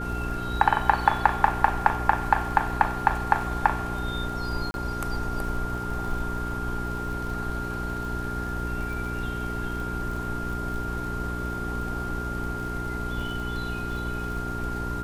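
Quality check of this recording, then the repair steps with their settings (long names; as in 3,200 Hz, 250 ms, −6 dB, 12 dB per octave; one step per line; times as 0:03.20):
surface crackle 43 per second −34 dBFS
mains hum 60 Hz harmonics 7 −33 dBFS
whistle 1,400 Hz −33 dBFS
0:04.71–0:04.74: drop-out 31 ms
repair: click removal
hum removal 60 Hz, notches 7
notch filter 1,400 Hz, Q 30
repair the gap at 0:04.71, 31 ms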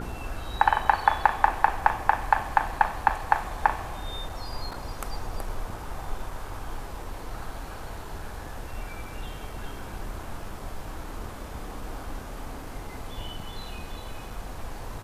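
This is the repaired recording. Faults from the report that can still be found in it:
none of them is left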